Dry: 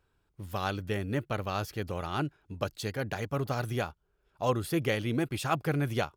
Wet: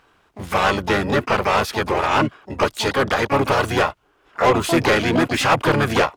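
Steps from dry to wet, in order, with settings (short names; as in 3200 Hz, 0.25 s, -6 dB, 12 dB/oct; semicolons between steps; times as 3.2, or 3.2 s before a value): harmoniser -5 st -2 dB, +12 st -9 dB; overdrive pedal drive 21 dB, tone 2900 Hz, clips at -11 dBFS; gain +5 dB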